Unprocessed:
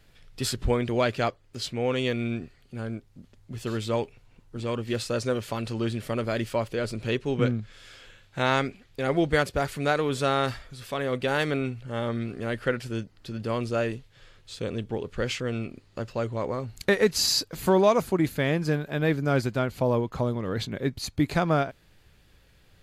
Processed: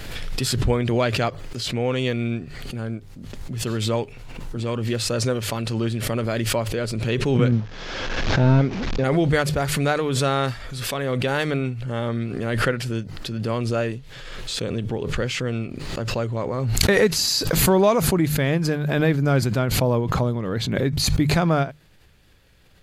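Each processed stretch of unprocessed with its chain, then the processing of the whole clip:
7.52–9.04 s: one-bit delta coder 32 kbps, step -38.5 dBFS + tilt shelf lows +5 dB, about 1.4 kHz
whole clip: hum notches 50/100/150 Hz; dynamic bell 140 Hz, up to +5 dB, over -44 dBFS, Q 1.8; swell ahead of each attack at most 29 dB/s; trim +2 dB

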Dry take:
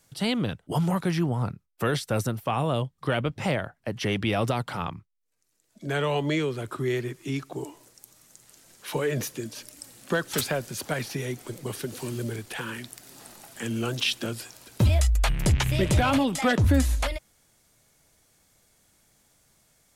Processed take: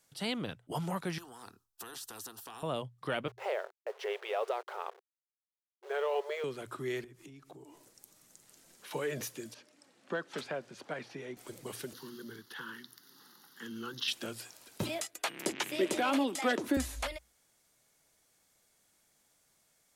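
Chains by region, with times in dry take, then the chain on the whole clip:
1.18–2.63 s: static phaser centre 580 Hz, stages 6 + compression 2:1, threshold -36 dBFS + spectrum-flattening compressor 2:1
3.28–6.44 s: send-on-delta sampling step -37.5 dBFS + brick-wall FIR high-pass 370 Hz + tilt EQ -3.5 dB/octave
7.04–8.91 s: bass shelf 360 Hz +9 dB + compression 8:1, threshold -39 dBFS
9.54–11.37 s: high-pass 170 Hz + tape spacing loss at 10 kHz 21 dB
11.93–14.08 s: high-pass 140 Hz 24 dB/octave + static phaser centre 2.4 kHz, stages 6
14.83–16.77 s: high-pass 230 Hz 24 dB/octave + peaking EQ 340 Hz +8 dB 0.66 oct + tape noise reduction on one side only encoder only
whole clip: bass shelf 190 Hz -10.5 dB; hum notches 60/120 Hz; trim -6.5 dB

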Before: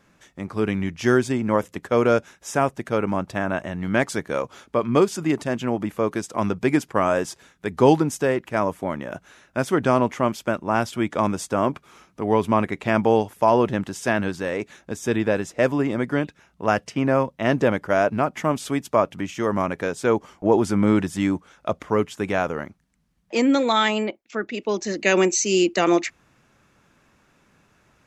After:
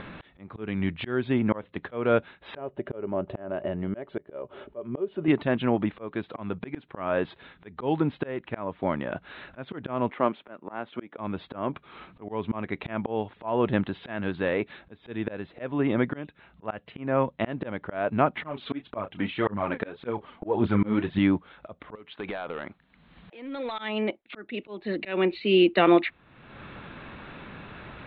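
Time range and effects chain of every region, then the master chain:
2.57–5.28 s: compression 1.5:1, threshold -35 dBFS + tape spacing loss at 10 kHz 25 dB + small resonant body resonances 400/580/2900 Hz, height 13 dB
10.10–11.18 s: partial rectifier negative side -3 dB + high-pass 250 Hz + distance through air 300 m
18.42–21.19 s: doubling 29 ms -11.5 dB + phaser 1.8 Hz, delay 4.6 ms, feedback 52%
21.95–23.79 s: bass shelf 240 Hz -12 dB + compression 10:1, threshold -30 dBFS + hard clipper -29 dBFS
whole clip: steep low-pass 4 kHz 96 dB/octave; upward compressor, threshold -27 dBFS; slow attack 323 ms

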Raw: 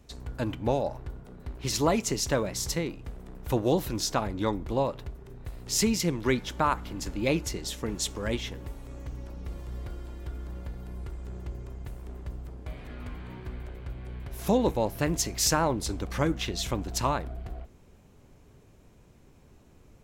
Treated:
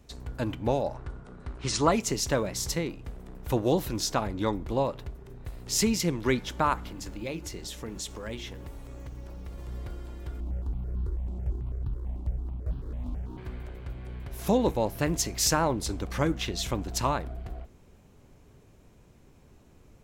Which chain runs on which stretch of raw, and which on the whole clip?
0.94–1.92 s: brick-wall FIR low-pass 10 kHz + peaking EQ 1.3 kHz +7 dB 0.71 oct
6.88–9.58 s: hum notches 50/100/150/200/250/300/350/400 Hz + compression 2:1, threshold -37 dBFS + companded quantiser 8-bit
10.40–13.38 s: median filter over 25 samples + bass shelf 410 Hz +8 dB + stepped phaser 9.1 Hz 450–2100 Hz
whole clip: none

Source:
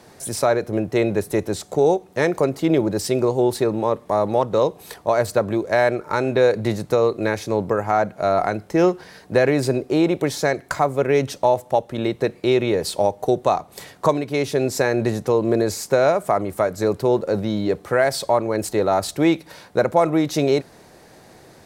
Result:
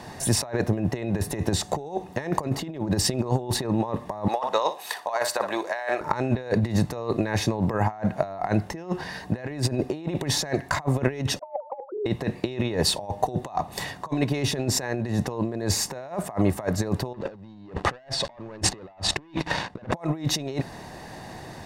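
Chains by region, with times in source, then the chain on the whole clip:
4.28–6.01 s: high-pass 740 Hz + flutter echo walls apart 10.1 m, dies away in 0.24 s
11.39–12.06 s: formants replaced by sine waves + brick-wall FIR band-pass 220–1500 Hz
17.14–19.94 s: waveshaping leveller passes 3 + distance through air 79 m
whole clip: treble shelf 7.1 kHz -9 dB; comb 1.1 ms, depth 44%; compressor with a negative ratio -26 dBFS, ratio -0.5

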